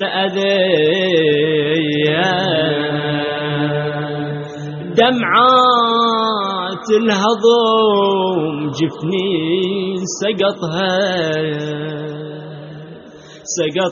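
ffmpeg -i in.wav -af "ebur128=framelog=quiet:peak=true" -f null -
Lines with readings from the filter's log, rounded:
Integrated loudness:
  I:         -15.6 LUFS
  Threshold: -26.1 LUFS
Loudness range:
  LRA:         6.5 LU
  Threshold: -35.9 LUFS
  LRA low:   -19.6 LUFS
  LRA high:  -13.2 LUFS
True peak:
  Peak:       -2.1 dBFS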